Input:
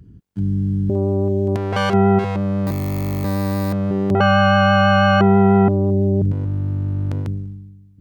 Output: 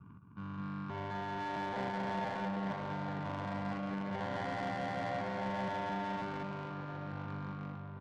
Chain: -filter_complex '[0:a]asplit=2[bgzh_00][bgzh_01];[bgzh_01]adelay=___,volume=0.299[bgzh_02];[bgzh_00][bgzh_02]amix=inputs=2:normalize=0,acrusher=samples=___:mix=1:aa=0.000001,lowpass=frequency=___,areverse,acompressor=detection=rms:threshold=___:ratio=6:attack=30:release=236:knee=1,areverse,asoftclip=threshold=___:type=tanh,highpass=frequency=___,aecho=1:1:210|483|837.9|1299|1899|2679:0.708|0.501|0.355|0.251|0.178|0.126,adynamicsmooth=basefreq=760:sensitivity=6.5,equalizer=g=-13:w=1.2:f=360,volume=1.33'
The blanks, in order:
48, 34, 1600, 0.0282, 0.0473, 230